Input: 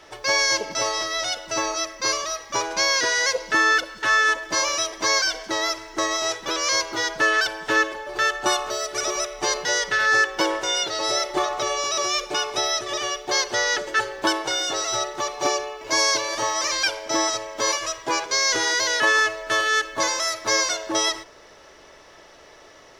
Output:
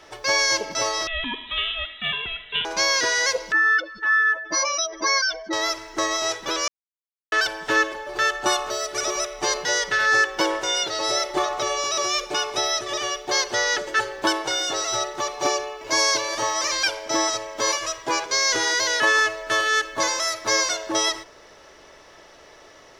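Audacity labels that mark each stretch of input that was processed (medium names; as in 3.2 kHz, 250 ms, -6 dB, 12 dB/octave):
1.070000	2.650000	frequency inversion carrier 3.9 kHz
3.520000	5.530000	spectral contrast enhancement exponent 2.1
6.680000	7.320000	mute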